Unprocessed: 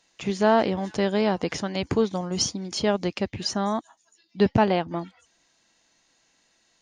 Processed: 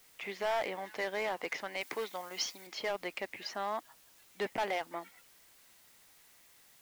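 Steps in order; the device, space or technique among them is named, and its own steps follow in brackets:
drive-through speaker (band-pass filter 550–3,400 Hz; parametric band 2,100 Hz +9.5 dB 0.41 octaves; hard clipping −21.5 dBFS, distortion −8 dB; white noise bed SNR 23 dB)
0:01.81–0:02.67: spectral tilt +2 dB per octave
level −6.5 dB

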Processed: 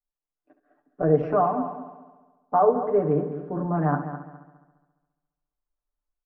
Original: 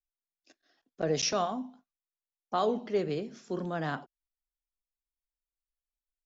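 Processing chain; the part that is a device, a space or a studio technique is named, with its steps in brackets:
mains-hum notches 60/120/180/240/300/360/420/480/540 Hz
comb filter 6.8 ms, depth 97%
echo machine with several playback heads 69 ms, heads first and third, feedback 45%, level −12 dB
dynamic equaliser 3,700 Hz, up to −7 dB, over −56 dBFS, Q 4.3
action camera in a waterproof case (low-pass filter 1,300 Hz 24 dB per octave; automatic gain control gain up to 6 dB; AAC 96 kbit/s 48,000 Hz)

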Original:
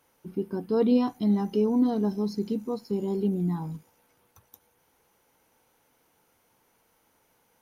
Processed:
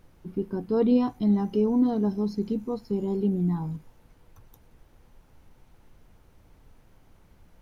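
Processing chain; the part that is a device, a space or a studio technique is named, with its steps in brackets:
car interior (parametric band 110 Hz +7.5 dB 0.85 octaves; high-shelf EQ 4,300 Hz −7.5 dB; brown noise bed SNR 25 dB)

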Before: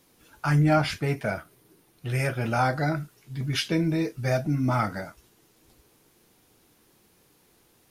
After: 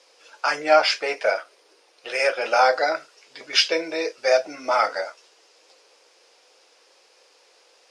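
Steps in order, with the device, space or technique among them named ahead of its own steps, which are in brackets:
phone speaker on a table (loudspeaker in its box 490–7,600 Hz, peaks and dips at 520 Hz +8 dB, 2,600 Hz +4 dB, 5,000 Hz +8 dB)
level +6.5 dB

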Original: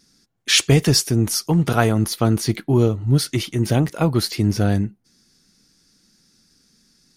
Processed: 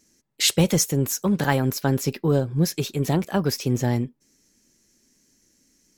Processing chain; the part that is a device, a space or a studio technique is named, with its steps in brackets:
nightcore (speed change +20%)
level −4 dB

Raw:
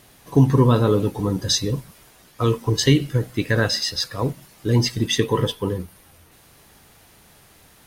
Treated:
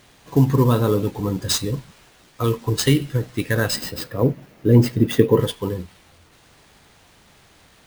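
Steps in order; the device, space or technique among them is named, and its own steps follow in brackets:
early companding sampler (sample-rate reduction 13,000 Hz, jitter 0%; log-companded quantiser 8 bits)
0:03.76–0:05.40: graphic EQ with 10 bands 125 Hz +4 dB, 250 Hz +6 dB, 500 Hz +7 dB, 1,000 Hz −3 dB, 4,000 Hz −6 dB, 8,000 Hz −9 dB
level −1 dB

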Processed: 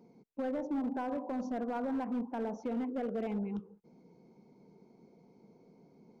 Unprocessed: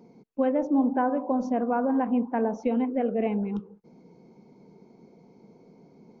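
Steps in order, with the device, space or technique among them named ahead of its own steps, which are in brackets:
limiter into clipper (brickwall limiter −19.5 dBFS, peak gain reduction 5.5 dB; hard clipping −23 dBFS, distortion −18 dB)
level −7 dB

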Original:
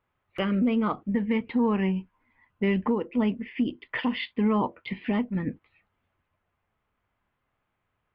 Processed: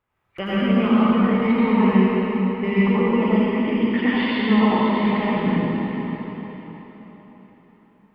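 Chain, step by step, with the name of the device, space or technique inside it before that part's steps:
cathedral (convolution reverb RT60 4.4 s, pre-delay 77 ms, DRR −10 dB)
level −1.5 dB

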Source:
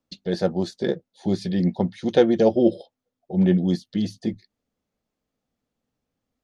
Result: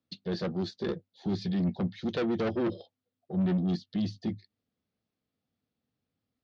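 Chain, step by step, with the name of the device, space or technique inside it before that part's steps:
guitar amplifier (tube saturation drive 21 dB, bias 0.25; bass and treble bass +3 dB, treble +8 dB; loudspeaker in its box 86–4,400 Hz, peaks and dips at 98 Hz +6 dB, 570 Hz −3 dB, 920 Hz −4 dB)
level −4.5 dB

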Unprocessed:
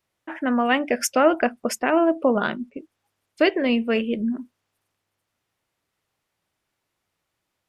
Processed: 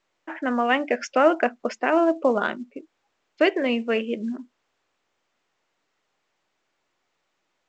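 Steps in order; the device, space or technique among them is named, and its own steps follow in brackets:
telephone (band-pass filter 270–3,400 Hz; mu-law 128 kbit/s 16,000 Hz)

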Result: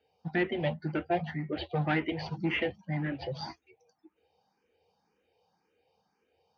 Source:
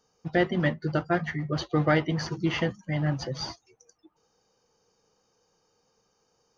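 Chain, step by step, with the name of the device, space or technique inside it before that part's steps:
barber-pole phaser into a guitar amplifier (frequency shifter mixed with the dry sound +1.9 Hz; soft clipping −21 dBFS, distortion −15 dB; loudspeaker in its box 78–4,000 Hz, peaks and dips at 82 Hz +8 dB, 120 Hz −8 dB, 780 Hz +6 dB, 1,200 Hz −9 dB, 2,400 Hz +7 dB)

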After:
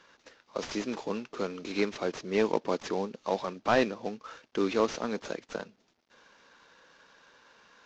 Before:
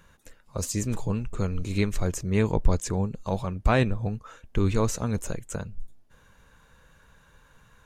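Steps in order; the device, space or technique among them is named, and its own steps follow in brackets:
early wireless headset (high-pass filter 260 Hz 24 dB per octave; variable-slope delta modulation 32 kbit/s)
level +1.5 dB

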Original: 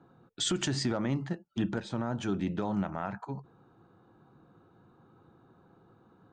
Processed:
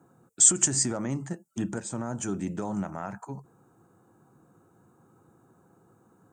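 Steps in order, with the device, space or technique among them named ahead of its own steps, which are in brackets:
budget condenser microphone (high-pass filter 75 Hz; high shelf with overshoot 5,500 Hz +13.5 dB, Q 3)

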